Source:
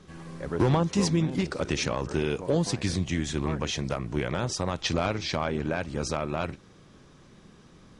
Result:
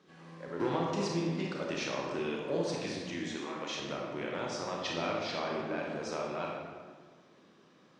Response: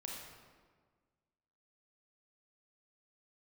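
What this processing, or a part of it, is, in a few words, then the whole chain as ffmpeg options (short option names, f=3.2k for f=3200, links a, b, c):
supermarket ceiling speaker: -filter_complex "[0:a]highpass=260,lowpass=5.4k[a];[1:a]atrim=start_sample=2205[b];[a][b]afir=irnorm=-1:irlink=0,asettb=1/sr,asplit=3[c][d][e];[c]atrim=end=3.364[f];[d]atrim=start=3.36:end=3.8,asetpts=PTS-STARTPTS,afade=t=in:d=0.004:c=qsin,afade=t=out:st=0.436:d=0.004:c=qsin,bass=f=250:g=-11,treble=f=4k:g=2[g];[e]atrim=start=3.796[h];[f][g]acrossfade=d=0.004:c1=hsin:c2=qsin[i];[i][h]acrossfade=d=0.004:c1=qsin:c2=hsin,volume=-3dB"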